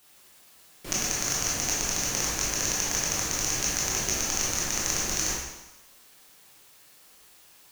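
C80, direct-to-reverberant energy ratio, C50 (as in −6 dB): 3.0 dB, −5.5 dB, 0.0 dB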